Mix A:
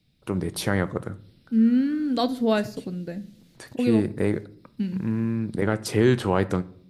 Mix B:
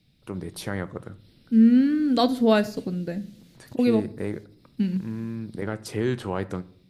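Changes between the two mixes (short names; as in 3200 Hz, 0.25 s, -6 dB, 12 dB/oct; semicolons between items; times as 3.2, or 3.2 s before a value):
first voice -6.5 dB; second voice +3.0 dB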